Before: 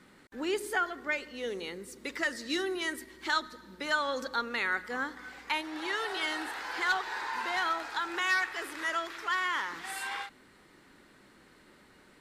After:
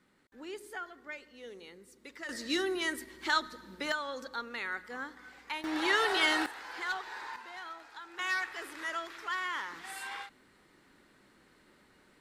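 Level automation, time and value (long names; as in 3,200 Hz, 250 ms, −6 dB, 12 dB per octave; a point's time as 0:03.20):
−11.5 dB
from 0:02.29 +0.5 dB
from 0:03.92 −6.5 dB
from 0:05.64 +5.5 dB
from 0:06.46 −6.5 dB
from 0:07.36 −14 dB
from 0:08.19 −4.5 dB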